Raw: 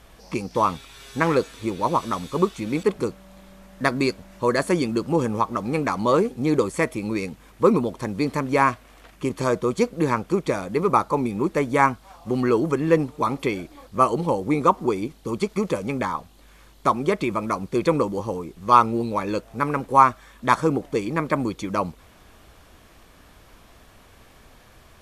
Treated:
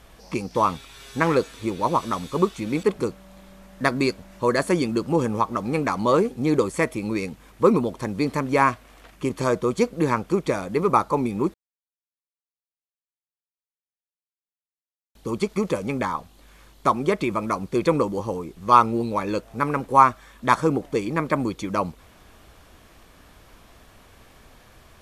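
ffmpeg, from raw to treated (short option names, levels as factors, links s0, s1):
-filter_complex "[0:a]asplit=3[s0][s1][s2];[s0]atrim=end=11.54,asetpts=PTS-STARTPTS,afade=t=out:st=11.536:d=0.004:c=hsin[s3];[s1]atrim=start=11.54:end=15.15,asetpts=PTS-STARTPTS,volume=0[s4];[s2]atrim=start=15.15,asetpts=PTS-STARTPTS,afade=t=in:d=0.004:c=hsin[s5];[s3][s4][s5]concat=n=3:v=0:a=1"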